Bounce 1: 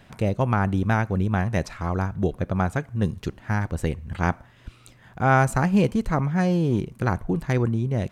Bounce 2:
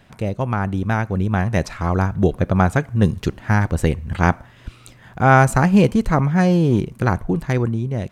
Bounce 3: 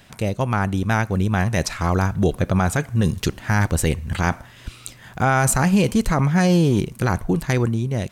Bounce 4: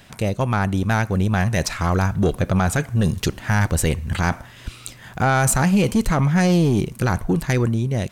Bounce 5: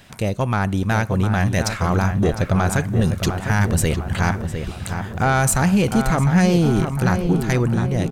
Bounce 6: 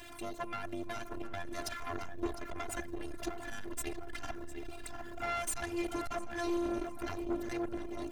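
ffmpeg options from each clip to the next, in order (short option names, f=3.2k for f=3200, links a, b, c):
-af "dynaudnorm=f=400:g=7:m=11.5dB"
-af "highshelf=f=3k:g=11.5,alimiter=limit=-8.5dB:level=0:latency=1:release=17"
-af "asoftclip=type=tanh:threshold=-12dB,volume=2dB"
-filter_complex "[0:a]asplit=2[a][b];[b]adelay=705,lowpass=f=2.3k:p=1,volume=-7dB,asplit=2[c][d];[d]adelay=705,lowpass=f=2.3k:p=1,volume=0.55,asplit=2[e][f];[f]adelay=705,lowpass=f=2.3k:p=1,volume=0.55,asplit=2[g][h];[h]adelay=705,lowpass=f=2.3k:p=1,volume=0.55,asplit=2[i][j];[j]adelay=705,lowpass=f=2.3k:p=1,volume=0.55,asplit=2[k][l];[l]adelay=705,lowpass=f=2.3k:p=1,volume=0.55,asplit=2[m][n];[n]adelay=705,lowpass=f=2.3k:p=1,volume=0.55[o];[a][c][e][g][i][k][m][o]amix=inputs=8:normalize=0"
-af "aeval=exprs='val(0)+0.5*0.0224*sgn(val(0))':c=same,afftfilt=real='hypot(re,im)*cos(PI*b)':imag='0':win_size=512:overlap=0.75,aeval=exprs='(tanh(17.8*val(0)+0.55)-tanh(0.55))/17.8':c=same,volume=-4dB"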